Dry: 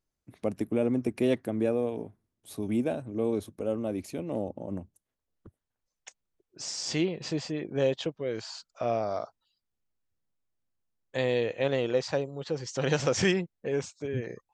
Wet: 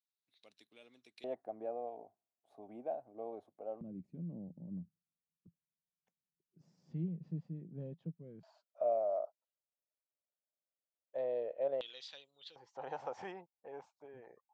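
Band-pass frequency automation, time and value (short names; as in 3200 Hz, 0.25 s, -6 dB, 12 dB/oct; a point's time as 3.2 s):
band-pass, Q 6.6
3900 Hz
from 1.24 s 720 Hz
from 3.81 s 170 Hz
from 8.43 s 610 Hz
from 11.81 s 3500 Hz
from 12.56 s 830 Hz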